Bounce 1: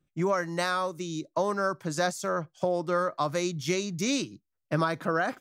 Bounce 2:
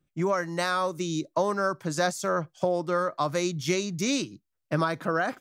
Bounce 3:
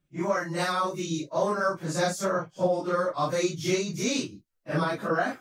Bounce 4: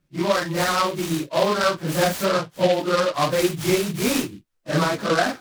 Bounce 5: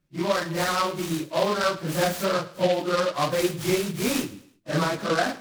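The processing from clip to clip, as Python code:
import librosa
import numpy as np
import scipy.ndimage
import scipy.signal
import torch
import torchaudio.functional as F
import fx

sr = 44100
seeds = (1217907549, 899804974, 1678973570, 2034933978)

y1 = fx.rider(x, sr, range_db=10, speed_s=0.5)
y1 = y1 * 10.0 ** (1.5 / 20.0)
y2 = fx.phase_scramble(y1, sr, seeds[0], window_ms=100)
y3 = fx.noise_mod_delay(y2, sr, seeds[1], noise_hz=2800.0, depth_ms=0.057)
y3 = y3 * 10.0 ** (6.0 / 20.0)
y4 = fx.echo_feedback(y3, sr, ms=107, feedback_pct=40, wet_db=-18.5)
y4 = y4 * 10.0 ** (-3.5 / 20.0)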